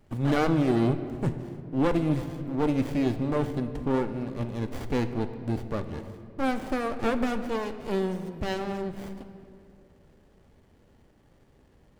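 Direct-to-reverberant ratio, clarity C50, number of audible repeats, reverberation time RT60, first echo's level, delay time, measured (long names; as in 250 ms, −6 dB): 8.0 dB, 10.5 dB, no echo audible, 2.7 s, no echo audible, no echo audible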